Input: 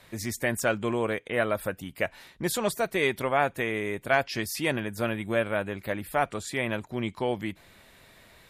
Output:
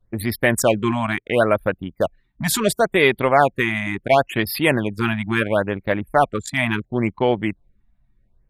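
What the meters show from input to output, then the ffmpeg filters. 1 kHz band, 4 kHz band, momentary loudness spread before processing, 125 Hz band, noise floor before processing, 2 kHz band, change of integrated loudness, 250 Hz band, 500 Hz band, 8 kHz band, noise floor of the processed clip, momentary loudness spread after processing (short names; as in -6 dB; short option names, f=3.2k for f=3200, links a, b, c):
+9.5 dB, +8.0 dB, 7 LU, +10.0 dB, -57 dBFS, +7.5 dB, +8.5 dB, +9.5 dB, +8.5 dB, +7.5 dB, -64 dBFS, 8 LU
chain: -af "anlmdn=3.98,acontrast=55,afftfilt=real='re*(1-between(b*sr/1024,400*pow(7600/400,0.5+0.5*sin(2*PI*0.72*pts/sr))/1.41,400*pow(7600/400,0.5+0.5*sin(2*PI*0.72*pts/sr))*1.41))':imag='im*(1-between(b*sr/1024,400*pow(7600/400,0.5+0.5*sin(2*PI*0.72*pts/sr))/1.41,400*pow(7600/400,0.5+0.5*sin(2*PI*0.72*pts/sr))*1.41))':win_size=1024:overlap=0.75,volume=4dB"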